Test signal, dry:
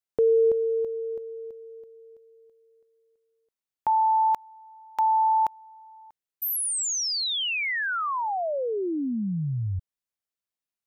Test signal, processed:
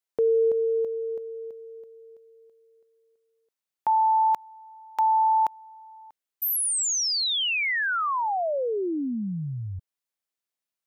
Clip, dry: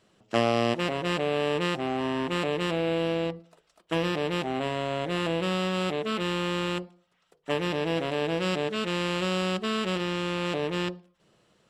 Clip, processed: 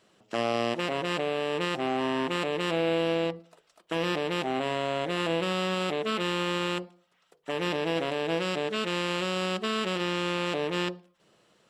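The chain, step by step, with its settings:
low-shelf EQ 140 Hz −11 dB
brickwall limiter −19.5 dBFS
level +2 dB

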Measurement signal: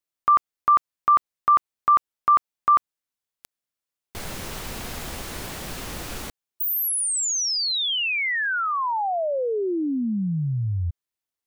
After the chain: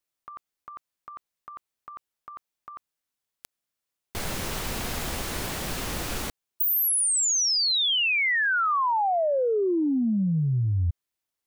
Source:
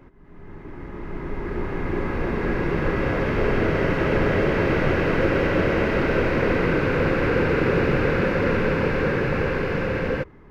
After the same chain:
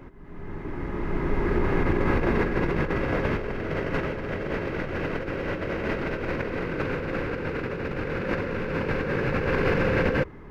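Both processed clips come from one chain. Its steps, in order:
compressor whose output falls as the input rises −25 dBFS, ratio −0.5

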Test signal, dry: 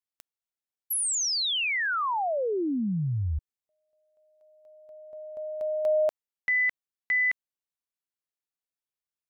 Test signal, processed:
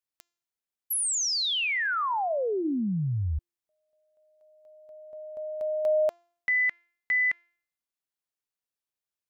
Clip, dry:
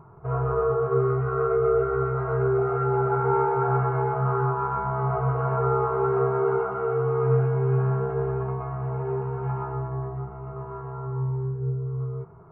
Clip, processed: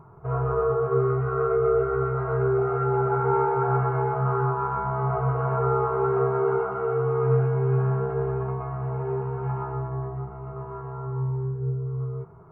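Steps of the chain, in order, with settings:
hum removal 345.2 Hz, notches 22

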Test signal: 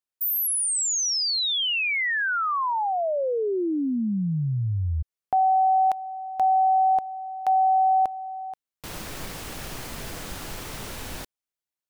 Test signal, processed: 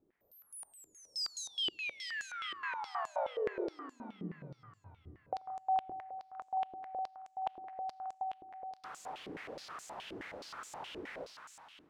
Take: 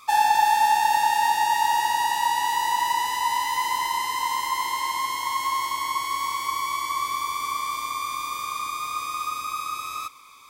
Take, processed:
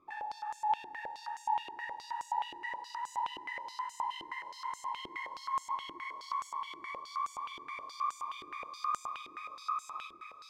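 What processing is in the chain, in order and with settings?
downward compressor 6 to 1, threshold −30 dBFS
background noise brown −58 dBFS
high-shelf EQ 2,600 Hz −9.5 dB
echo with a time of its own for lows and highs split 1,100 Hz, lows 87 ms, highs 433 ms, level −4.5 dB
four-comb reverb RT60 3.6 s, combs from 26 ms, DRR 10.5 dB
band-pass on a step sequencer 9.5 Hz 350–7,200 Hz
level +3.5 dB

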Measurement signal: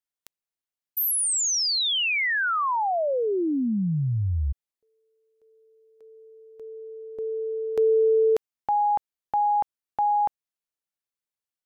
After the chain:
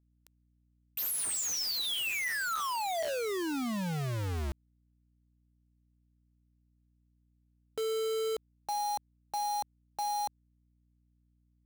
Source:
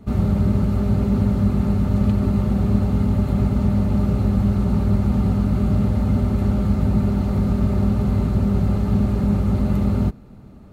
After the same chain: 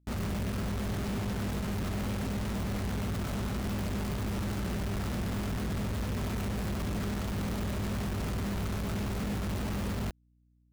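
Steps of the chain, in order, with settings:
tuned comb filter 660 Hz, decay 0.33 s, mix 80%
log-companded quantiser 2 bits
mains hum 60 Hz, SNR 34 dB
level −6 dB

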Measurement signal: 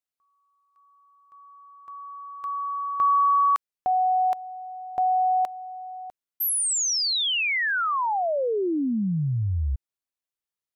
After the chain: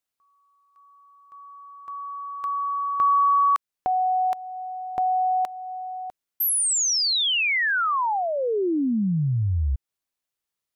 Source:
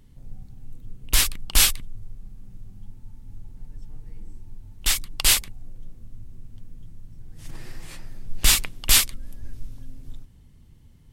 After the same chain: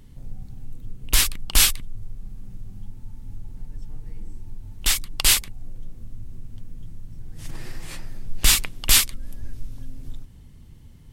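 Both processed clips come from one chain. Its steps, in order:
dynamic equaliser 620 Hz, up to −4 dB, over −39 dBFS, Q 2.1
in parallel at −1.5 dB: downward compressor, threshold −34 dBFS

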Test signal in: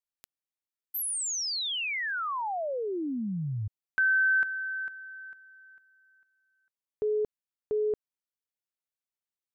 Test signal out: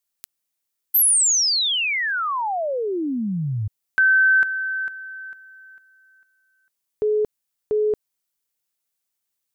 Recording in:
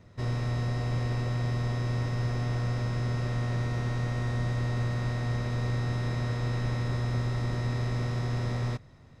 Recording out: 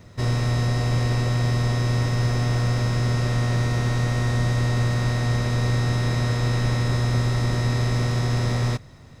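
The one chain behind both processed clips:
high-shelf EQ 5,100 Hz +9.5 dB
level +7.5 dB

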